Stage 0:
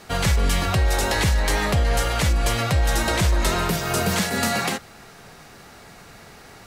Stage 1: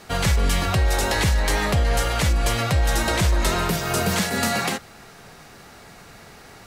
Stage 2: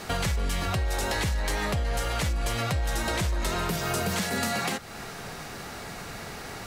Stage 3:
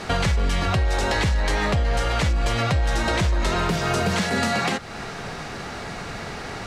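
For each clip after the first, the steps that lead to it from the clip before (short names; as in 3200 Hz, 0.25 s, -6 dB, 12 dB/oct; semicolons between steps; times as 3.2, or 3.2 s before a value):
nothing audible
in parallel at -7 dB: soft clip -28.5 dBFS, distortion -6 dB; on the sum: compressor 3:1, threshold -32 dBFS, peak gain reduction 12.5 dB; gain +3 dB
air absorption 69 m; gain +6.5 dB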